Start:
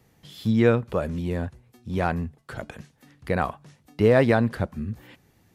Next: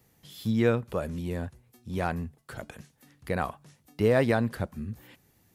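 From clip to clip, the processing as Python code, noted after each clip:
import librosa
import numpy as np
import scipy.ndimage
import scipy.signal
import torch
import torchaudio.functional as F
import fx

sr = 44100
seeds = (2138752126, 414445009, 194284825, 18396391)

y = fx.high_shelf(x, sr, hz=7600.0, db=11.5)
y = y * librosa.db_to_amplitude(-5.0)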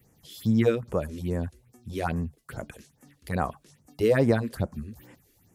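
y = fx.phaser_stages(x, sr, stages=4, low_hz=130.0, high_hz=4000.0, hz=2.4, feedback_pct=25)
y = y * librosa.db_to_amplitude(3.0)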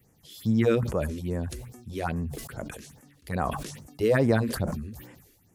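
y = fx.sustainer(x, sr, db_per_s=52.0)
y = y * librosa.db_to_amplitude(-1.5)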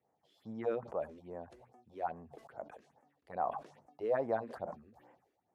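y = fx.bandpass_q(x, sr, hz=750.0, q=2.7)
y = y * librosa.db_to_amplitude(-2.0)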